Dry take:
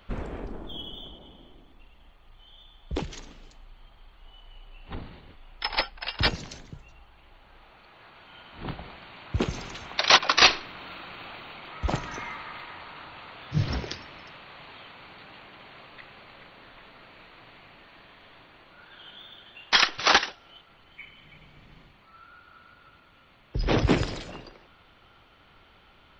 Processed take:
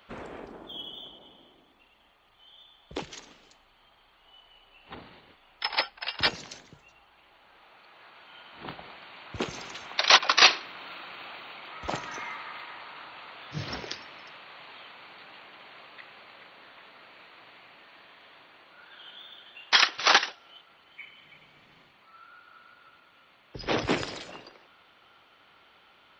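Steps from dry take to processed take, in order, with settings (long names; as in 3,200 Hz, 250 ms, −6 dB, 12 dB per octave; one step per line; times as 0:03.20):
high-pass filter 470 Hz 6 dB per octave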